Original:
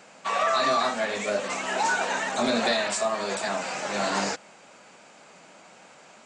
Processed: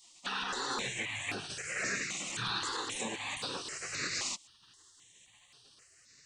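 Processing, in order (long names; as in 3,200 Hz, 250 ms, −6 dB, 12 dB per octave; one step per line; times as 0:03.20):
gate on every frequency bin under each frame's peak −15 dB weak
0:00.86–0:02.45: octave-band graphic EQ 125/250/1,000/2,000/4,000 Hz +7/−4/−9/+7/−5 dB
brickwall limiter −25 dBFS, peak gain reduction 6.5 dB
step-sequenced phaser 3.8 Hz 430–7,100 Hz
level +2.5 dB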